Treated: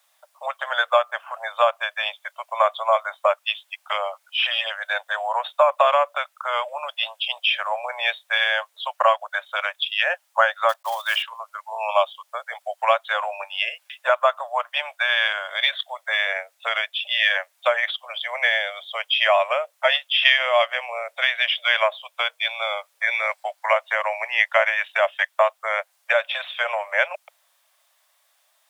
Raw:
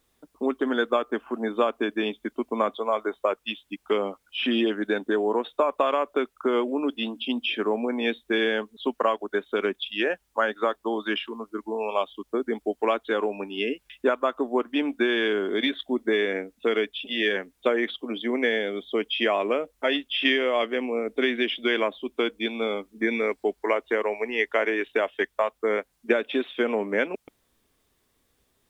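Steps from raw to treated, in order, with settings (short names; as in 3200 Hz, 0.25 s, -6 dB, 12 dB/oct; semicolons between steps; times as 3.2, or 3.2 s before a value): 10.69–11.23 block floating point 5-bit; steep high-pass 570 Hz 96 dB/oct; gain +7.5 dB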